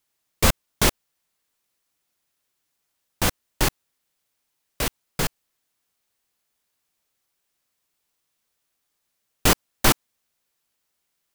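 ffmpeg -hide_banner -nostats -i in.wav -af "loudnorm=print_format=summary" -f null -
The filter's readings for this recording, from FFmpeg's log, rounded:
Input Integrated:    -23.2 LUFS
Input True Peak:      -2.7 dBTP
Input LRA:             7.4 LU
Input Threshold:     -33.4 LUFS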